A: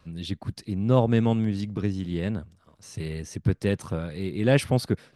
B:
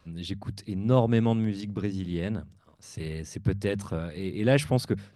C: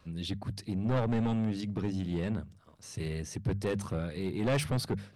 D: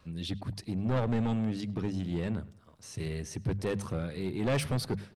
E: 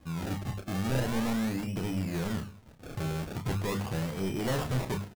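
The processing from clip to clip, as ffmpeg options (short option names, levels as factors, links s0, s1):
-af "bandreject=f=50:t=h:w=6,bandreject=f=100:t=h:w=6,bandreject=f=150:t=h:w=6,bandreject=f=200:t=h:w=6,volume=0.841"
-af "asoftclip=type=tanh:threshold=0.0596"
-filter_complex "[0:a]asplit=2[s0][s1];[s1]adelay=104,lowpass=f=4400:p=1,volume=0.0891,asplit=2[s2][s3];[s3]adelay=104,lowpass=f=4400:p=1,volume=0.39,asplit=2[s4][s5];[s5]adelay=104,lowpass=f=4400:p=1,volume=0.39[s6];[s0][s2][s4][s6]amix=inputs=4:normalize=0"
-filter_complex "[0:a]acrusher=samples=31:mix=1:aa=0.000001:lfo=1:lforange=31:lforate=0.41,asoftclip=type=tanh:threshold=0.0251,asplit=2[s0][s1];[s1]adelay=31,volume=0.447[s2];[s0][s2]amix=inputs=2:normalize=0,volume=1.58"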